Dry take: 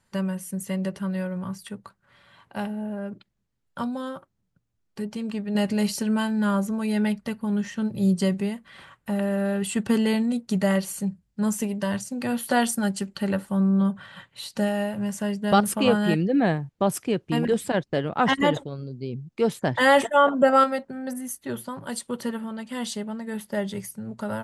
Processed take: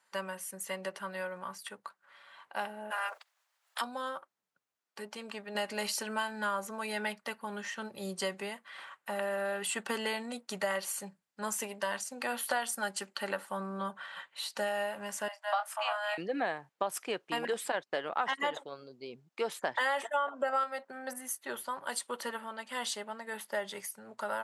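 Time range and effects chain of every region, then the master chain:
2.9–3.8 spectral limiter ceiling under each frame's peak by 29 dB + HPF 590 Hz 24 dB/oct
15.28–16.18 steep high-pass 610 Hz 96 dB/oct + high shelf 2500 Hz -10 dB + doubler 27 ms -8 dB
whole clip: HPF 1000 Hz 12 dB/oct; tilt shelf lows +5 dB, about 1300 Hz; compressor 6:1, threshold -31 dBFS; gain +2.5 dB

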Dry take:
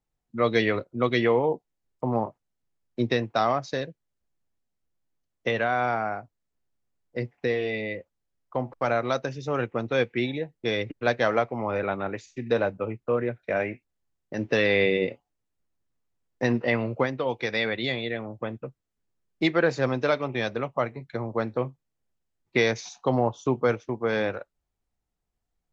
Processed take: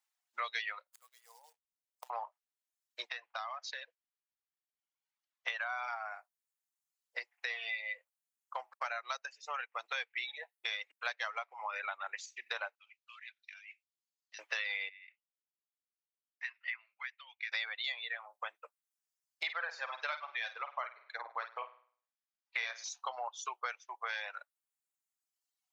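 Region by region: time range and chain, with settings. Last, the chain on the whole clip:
0.87–2.1 bell 2300 Hz -9 dB 2 oct + short-mantissa float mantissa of 2-bit + flipped gate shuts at -29 dBFS, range -25 dB
3.09–5.48 compressor 3:1, threshold -34 dBFS + air absorption 120 m
8.78–9.77 notch 3500 Hz, Q 10 + upward expander, over -36 dBFS
12.75–14.39 Butterworth band-pass 4800 Hz, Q 1.2 + air absorption 62 m + negative-ratio compressor -54 dBFS
14.89–17.52 ladder band-pass 2500 Hz, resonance 45% + high shelf 3500 Hz -6 dB
19.43–22.84 air absorption 150 m + flutter echo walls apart 8.8 m, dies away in 0.5 s
whole clip: Bessel high-pass 1300 Hz, order 6; reverb removal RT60 1.3 s; compressor 4:1, threshold -42 dBFS; gain +5.5 dB

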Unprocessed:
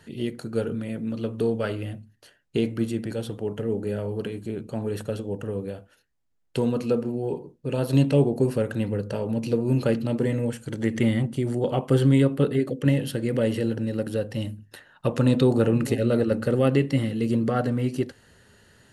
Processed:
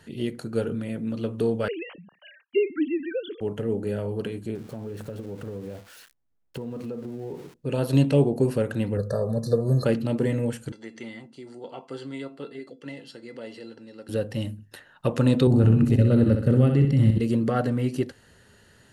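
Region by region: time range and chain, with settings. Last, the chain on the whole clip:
1.68–3.41 sine-wave speech + high shelf 2000 Hz +8 dB + mismatched tape noise reduction encoder only
4.55–7.54 switching spikes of -26.5 dBFS + LPF 1300 Hz 6 dB/oct + compressor 5:1, threshold -31 dBFS
8.97–9.85 brick-wall FIR band-stop 1800–3600 Hz + comb 1.7 ms, depth 77%
10.72–14.09 speaker cabinet 270–8300 Hz, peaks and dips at 640 Hz -6 dB, 910 Hz +6 dB, 4500 Hz +9 dB + resonator 680 Hz, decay 0.17 s, mix 80%
15.47–17.2 tone controls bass +14 dB, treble -1 dB + level quantiser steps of 18 dB + flutter echo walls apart 10.9 m, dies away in 0.56 s
whole clip: dry

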